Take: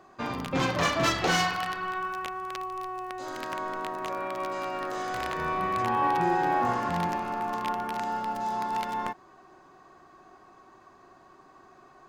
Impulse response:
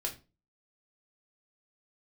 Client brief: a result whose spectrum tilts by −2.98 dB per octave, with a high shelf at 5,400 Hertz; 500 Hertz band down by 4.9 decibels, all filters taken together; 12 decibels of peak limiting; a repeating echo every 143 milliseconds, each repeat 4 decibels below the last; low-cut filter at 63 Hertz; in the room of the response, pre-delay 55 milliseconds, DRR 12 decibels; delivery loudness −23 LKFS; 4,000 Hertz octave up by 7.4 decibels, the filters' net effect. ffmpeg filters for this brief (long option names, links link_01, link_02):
-filter_complex "[0:a]highpass=63,equalizer=frequency=500:width_type=o:gain=-7.5,equalizer=frequency=4000:width_type=o:gain=7.5,highshelf=frequency=5400:gain=6,alimiter=limit=-21dB:level=0:latency=1,aecho=1:1:143|286|429|572|715|858|1001|1144|1287:0.631|0.398|0.25|0.158|0.0994|0.0626|0.0394|0.0249|0.0157,asplit=2[link_01][link_02];[1:a]atrim=start_sample=2205,adelay=55[link_03];[link_02][link_03]afir=irnorm=-1:irlink=0,volume=-14dB[link_04];[link_01][link_04]amix=inputs=2:normalize=0,volume=7dB"